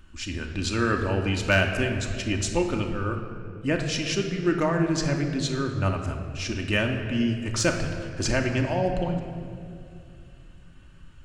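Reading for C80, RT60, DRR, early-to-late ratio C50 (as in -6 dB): 7.5 dB, 2.4 s, 2.5 dB, 6.0 dB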